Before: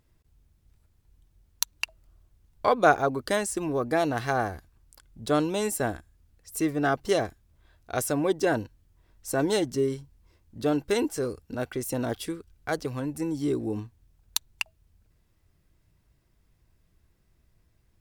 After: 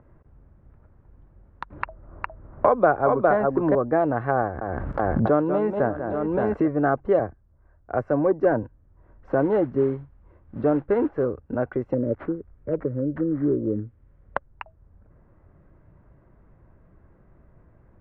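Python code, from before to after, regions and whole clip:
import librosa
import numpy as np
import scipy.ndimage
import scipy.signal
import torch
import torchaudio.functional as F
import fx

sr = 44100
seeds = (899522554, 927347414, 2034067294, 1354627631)

y = fx.chain(x, sr, fx.echo_single(ms=409, db=-4.5),
    fx.band_squash(depth_pct=70), at=(1.7, 3.75))
y = fx.chain(y, sr, fx.highpass(hz=75.0, slope=6),
    fx.echo_multitap(ms=(191, 572, 833), db=(-11.0, -18.5, -17.0)),
    fx.pre_swell(db_per_s=21.0), at=(4.42, 6.68))
y = fx.chain(y, sr, fx.peak_eq(hz=3400.0, db=-14.0, octaves=0.24),
    fx.clip_hard(threshold_db=-17.5),
    fx.band_widen(depth_pct=40), at=(7.19, 8.63))
y = fx.chain(y, sr, fx.high_shelf(hz=8100.0, db=-11.0),
    fx.mod_noise(seeds[0], snr_db=14), at=(9.29, 11.24))
y = fx.chain(y, sr, fx.brickwall_bandstop(low_hz=620.0, high_hz=5000.0),
    fx.resample_bad(factor=6, down='none', up='hold'), at=(11.94, 14.47))
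y = scipy.signal.sosfilt(scipy.signal.butter(4, 1500.0, 'lowpass', fs=sr, output='sos'), y)
y = fx.peak_eq(y, sr, hz=560.0, db=6.0, octaves=0.21)
y = fx.band_squash(y, sr, depth_pct=40)
y = F.gain(torch.from_numpy(y), 3.5).numpy()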